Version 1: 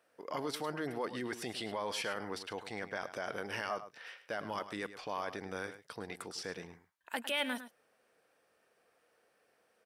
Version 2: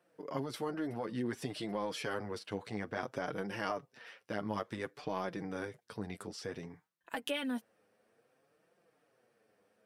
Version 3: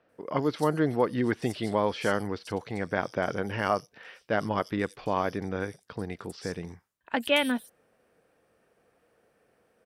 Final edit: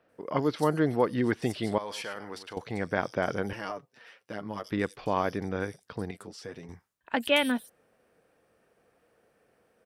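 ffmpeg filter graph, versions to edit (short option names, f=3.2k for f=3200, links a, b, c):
-filter_complex "[1:a]asplit=2[a][b];[2:a]asplit=4[c][d][e][f];[c]atrim=end=1.782[g];[0:a]atrim=start=1.778:end=2.572[h];[d]atrim=start=2.568:end=3.532[i];[a]atrim=start=3.528:end=4.642[j];[e]atrim=start=4.638:end=6.112[k];[b]atrim=start=6.108:end=6.692[l];[f]atrim=start=6.688[m];[g][h]acrossfade=d=0.004:c1=hsin:c2=hsin[n];[n][i]acrossfade=d=0.004:c1=hsin:c2=hsin[o];[o][j]acrossfade=d=0.004:c1=hsin:c2=hsin[p];[p][k]acrossfade=d=0.004:c1=hsin:c2=hsin[q];[q][l]acrossfade=d=0.004:c1=hsin:c2=hsin[r];[r][m]acrossfade=d=0.004:c1=hsin:c2=hsin"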